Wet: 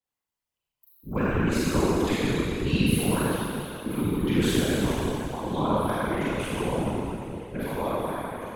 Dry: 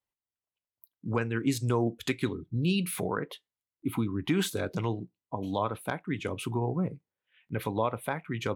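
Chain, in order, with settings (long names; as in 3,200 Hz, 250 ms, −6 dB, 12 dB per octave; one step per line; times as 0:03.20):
fade-out on the ending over 1.09 s
four-comb reverb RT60 2.8 s, combs from 31 ms, DRR −9 dB
random phases in short frames
level −4 dB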